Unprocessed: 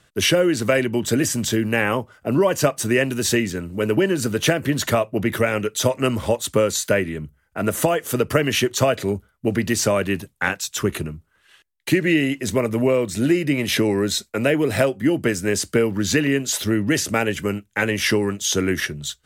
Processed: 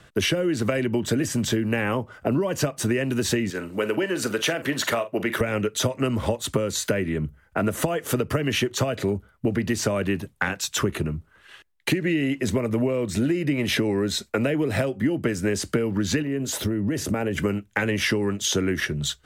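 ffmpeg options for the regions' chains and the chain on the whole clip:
ffmpeg -i in.wav -filter_complex "[0:a]asettb=1/sr,asplit=3[link_01][link_02][link_03];[link_01]atrim=end=3.504[link_04];[link_02]atrim=start=3.5:end=5.41,asetpts=PTS-STARTPTS,afade=type=in:duration=0.004:curve=qsin,afade=type=out:start_time=1.906:duration=0.004:curve=qsin,highpass=frequency=670:poles=1,asplit=2[link_05][link_06];[link_06]adelay=43,volume=-14dB[link_07];[link_05][link_07]amix=inputs=2:normalize=0,atrim=end_sample=84231[link_08];[link_03]atrim=start=5.406[link_09];[link_04][link_08]acrossfade=duration=0.004:curve1=hsin:curve2=qsin[link_10];[link_10][link_09]acrossfade=duration=0.004:curve1=qsin:curve2=hsin,asettb=1/sr,asplit=3[link_11][link_12][link_13];[link_11]atrim=end=16.224[link_14];[link_12]atrim=start=16.22:end=17.38,asetpts=PTS-STARTPTS,afade=type=in:duration=0.004:curve=qsin,afade=type=out:start_time=1.156:duration=0.004:curve=qsin,equalizer=frequency=3100:width=0.33:gain=-8,acompressor=threshold=-24dB:ratio=4:attack=3.2:release=140:knee=1:detection=peak[link_15];[link_13]atrim=start=17.376[link_16];[link_14][link_15]acrossfade=duration=0.004:curve1=hsin:curve2=qsin[link_17];[link_17][link_16]acrossfade=duration=0.004:curve1=qsin:curve2=hsin,acrossover=split=300|3000[link_18][link_19][link_20];[link_19]acompressor=threshold=-21dB:ratio=6[link_21];[link_18][link_21][link_20]amix=inputs=3:normalize=0,highshelf=frequency=3800:gain=-9,acompressor=threshold=-30dB:ratio=4,volume=8dB" out.wav

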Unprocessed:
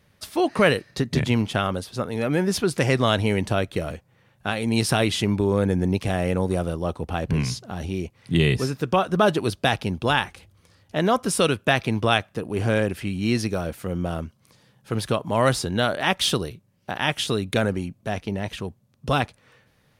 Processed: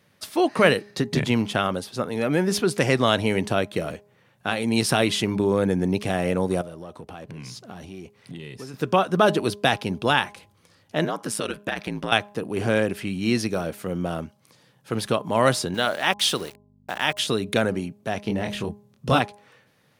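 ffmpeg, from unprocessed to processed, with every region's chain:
ffmpeg -i in.wav -filter_complex "[0:a]asettb=1/sr,asplit=3[link_01][link_02][link_03];[link_01]atrim=end=6.614[link_04];[link_02]atrim=start=6.61:end=8.74,asetpts=PTS-STARTPTS,afade=type=in:duration=0.004:curve=qsin,afade=type=out:start_time=2.126:duration=0.004:curve=qsin,aeval=exprs='if(lt(val(0),0),0.708*val(0),val(0))':channel_layout=same,acompressor=threshold=-33dB:ratio=10:attack=3.2:release=140:knee=1:detection=peak[link_05];[link_03]atrim=start=8.736[link_06];[link_04][link_05]acrossfade=duration=0.004:curve1=hsin:curve2=qsin[link_07];[link_07][link_06]acrossfade=duration=0.004:curve1=qsin:curve2=hsin,asettb=1/sr,asplit=3[link_08][link_09][link_10];[link_08]atrim=end=11.044[link_11];[link_09]atrim=start=11.04:end=12.12,asetpts=PTS-STARTPTS,afade=type=in:duration=0.004:curve=qsin,afade=type=out:start_time=1.076:duration=0.004:curve=qsin,aeval=exprs='val(0)*sin(2*PI*55*n/s)':channel_layout=same,equalizer=frequency=1700:width=2.8:gain=4,acompressor=threshold=-24dB:ratio=4:attack=3.2:release=140:knee=1:detection=peak[link_12];[link_10]atrim=start=12.116[link_13];[link_11][link_12]acrossfade=duration=0.004:curve1=hsin:curve2=qsin[link_14];[link_14][link_13]acrossfade=duration=0.004:curve1=qsin:curve2=hsin,asettb=1/sr,asplit=3[link_15][link_16][link_17];[link_15]atrim=end=15.744[link_18];[link_16]atrim=start=15.74:end=17.19,asetpts=PTS-STARTPTS,afade=type=in:duration=0.004:curve=qsin,afade=type=out:start_time=1.446:duration=0.004:curve=qsin,lowshelf=frequency=340:gain=-8,aeval=exprs='val(0)*gte(abs(val(0)),0.0112)':channel_layout=same,aeval=exprs='val(0)+0.00316*(sin(2*PI*50*n/s)+sin(2*PI*2*50*n/s)/2+sin(2*PI*3*50*n/s)/3+sin(2*PI*4*50*n/s)/4+sin(2*PI*5*50*n/s)/5)':channel_layout=same[link_19];[link_17]atrim=start=17.186[link_20];[link_18][link_19]acrossfade=duration=0.004:curve1=hsin:curve2=qsin[link_21];[link_21][link_20]acrossfade=duration=0.004:curve1=qsin:curve2=hsin,asettb=1/sr,asplit=3[link_22][link_23][link_24];[link_22]atrim=end=18.234[link_25];[link_23]atrim=start=18.23:end=19.19,asetpts=PTS-STARTPTS,afade=type=in:duration=0.004:curve=qsin,afade=type=out:start_time=0.956:duration=0.004:curve=qsin,lowshelf=frequency=180:gain=7,asplit=2[link_26][link_27];[link_27]adelay=24,volume=-4dB[link_28];[link_26][link_28]amix=inputs=2:normalize=0,atrim=end_sample=42336[link_29];[link_24]atrim=start=19.186[link_30];[link_25][link_29]acrossfade=duration=0.004:curve1=hsin:curve2=qsin[link_31];[link_31][link_30]acrossfade=duration=0.004:curve1=qsin:curve2=hsin,highpass=140,bandreject=frequency=205.4:width_type=h:width=4,bandreject=frequency=410.8:width_type=h:width=4,bandreject=frequency=616.2:width_type=h:width=4,bandreject=frequency=821.6:width_type=h:width=4,bandreject=frequency=1027:width_type=h:width=4,volume=1dB" out.wav

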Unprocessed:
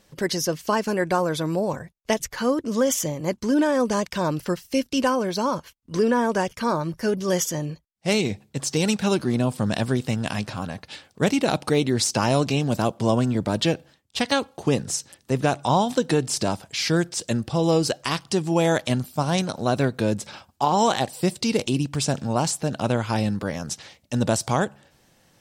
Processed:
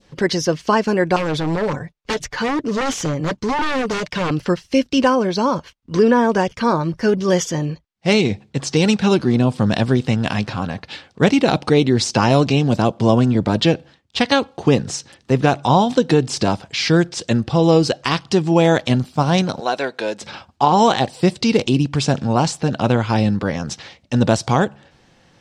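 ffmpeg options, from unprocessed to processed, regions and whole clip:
ffmpeg -i in.wav -filter_complex "[0:a]asettb=1/sr,asplit=3[link_01][link_02][link_03];[link_01]atrim=end=1.164[link_04];[link_02]atrim=start=1.16:end=4.31,asetpts=PTS-STARTPTS,afade=type=in:duration=0.004:curve=qsin,afade=type=out:start_time=3.146:duration=0.004:curve=qsin,aecho=1:1:6.8:0.34,atrim=end_sample=138915,aeval=exprs='0.0891*(abs(mod(val(0)/0.0891+3,4)-2)-1)':channel_layout=same[link_05];[link_03]atrim=start=4.306[link_06];[link_04][link_05]acrossfade=duration=0.004:curve1=hsin:curve2=qsin[link_07];[link_07][link_06]acrossfade=duration=0.004:curve1=qsin:curve2=hsin,asettb=1/sr,asplit=3[link_08][link_09][link_10];[link_08]atrim=end=19.604[link_11];[link_09]atrim=start=19.6:end=20.21,asetpts=PTS-STARTPTS,afade=type=in:duration=0.004:curve=qsin,afade=type=out:start_time=0.606:duration=0.004:curve=qsin,highpass=570,bandreject=frequency=1200:width=8[link_12];[link_10]atrim=start=20.206[link_13];[link_11][link_12]acrossfade=duration=0.004:curve1=hsin:curve2=qsin[link_14];[link_14][link_13]acrossfade=duration=0.004:curve1=qsin:curve2=hsin,lowpass=4800,bandreject=frequency=610:width=15,adynamicequalizer=threshold=0.02:dfrequency=1500:dqfactor=0.71:tfrequency=1500:tqfactor=0.71:attack=5:release=100:ratio=0.375:range=2:mode=cutabove:tftype=bell,volume=7dB" out.wav

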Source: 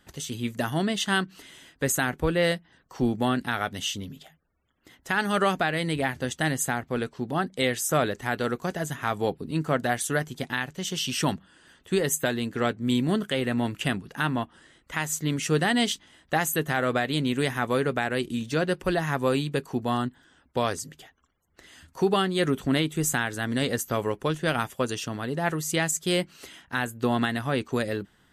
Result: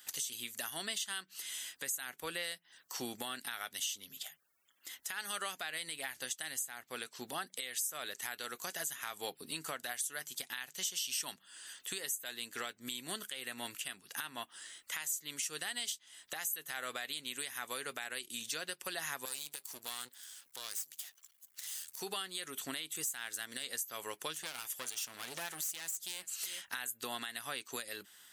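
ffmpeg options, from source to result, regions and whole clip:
ffmpeg -i in.wav -filter_complex "[0:a]asettb=1/sr,asplit=3[link_01][link_02][link_03];[link_01]atrim=end=19.254[link_04];[link_02]atrim=start=19.25:end=22.01,asetpts=PTS-STARTPTS,afade=type=in:duration=0.004:curve=qsin,afade=type=out:start_time=2.756:duration=0.004:curve=qsin,highshelf=frequency=3200:gain=12,acompressor=threshold=-51dB:ratio=1.5:attack=3.2:release=140:knee=1:detection=peak,aeval=exprs='max(val(0),0)':channel_layout=same[link_05];[link_03]atrim=start=22.006[link_06];[link_04][link_05]acrossfade=duration=0.004:curve1=hsin:curve2=qsin[link_07];[link_07][link_06]acrossfade=duration=0.004:curve1=qsin:curve2=hsin,asettb=1/sr,asplit=3[link_08][link_09][link_10];[link_08]atrim=end=22.954[link_11];[link_09]atrim=start=22.95:end=23.64,asetpts=PTS-STARTPTS,afade=type=in:duration=0.004:curve=qsin,afade=type=out:start_time=0.686:duration=0.004:curve=qsin,aeval=exprs='if(lt(val(0),0),0.708*val(0),val(0))':channel_layout=same,acompressor=mode=upward:threshold=-37dB:ratio=2.5:attack=3.2:release=140:knee=2.83:detection=peak[link_12];[link_10]atrim=start=23.636[link_13];[link_11][link_12]acrossfade=duration=0.004:curve1=hsin:curve2=qsin[link_14];[link_14][link_13]acrossfade=duration=0.004:curve1=qsin:curve2=hsin,asettb=1/sr,asplit=3[link_15][link_16][link_17];[link_15]atrim=end=24.354[link_18];[link_16]atrim=start=24.35:end=26.62,asetpts=PTS-STARTPTS,afade=type=in:duration=0.004:curve=qsin,afade=type=out:start_time=2.266:duration=0.004:curve=qsin,aecho=1:1:387:0.075,atrim=end_sample=100107,acompressor=threshold=-29dB:ratio=2:attack=3.2:release=140:knee=1:detection=peak,aeval=exprs='clip(val(0),-1,0.0119)':channel_layout=same[link_19];[link_17]atrim=start=26.616[link_20];[link_18][link_19]acrossfade=duration=0.004:curve1=hsin:curve2=qsin[link_21];[link_21][link_20]acrossfade=duration=0.004:curve1=qsin:curve2=hsin,aderivative,acompressor=threshold=-51dB:ratio=3,alimiter=level_in=14.5dB:limit=-24dB:level=0:latency=1:release=199,volume=-14.5dB,volume=13.5dB" out.wav

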